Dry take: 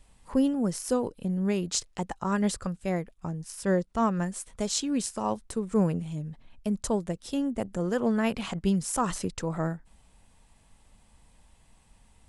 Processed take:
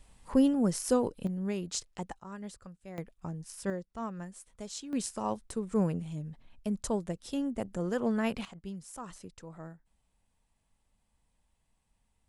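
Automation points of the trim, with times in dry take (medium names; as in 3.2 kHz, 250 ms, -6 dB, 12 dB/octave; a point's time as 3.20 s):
0 dB
from 1.27 s -6.5 dB
from 2.20 s -16.5 dB
from 2.98 s -5 dB
from 3.70 s -12.5 dB
from 4.93 s -4 dB
from 8.45 s -16 dB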